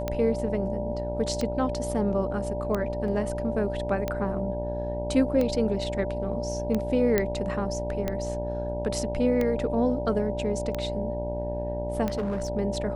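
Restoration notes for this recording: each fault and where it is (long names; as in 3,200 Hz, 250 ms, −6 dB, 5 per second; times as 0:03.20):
mains buzz 60 Hz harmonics 16 −33 dBFS
scratch tick 45 rpm −15 dBFS
whistle 590 Hz −31 dBFS
0:03.08: drop-out 2 ms
0:07.18: click −9 dBFS
0:12.07–0:12.50: clipping −24.5 dBFS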